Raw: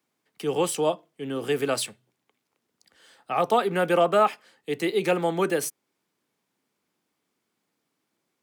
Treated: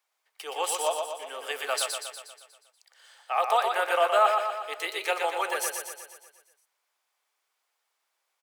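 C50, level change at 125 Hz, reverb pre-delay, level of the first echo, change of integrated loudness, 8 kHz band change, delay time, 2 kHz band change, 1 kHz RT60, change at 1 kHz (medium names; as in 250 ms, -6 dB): no reverb, under -40 dB, no reverb, -5.0 dB, -2.0 dB, +1.5 dB, 120 ms, +1.5 dB, no reverb, +1.0 dB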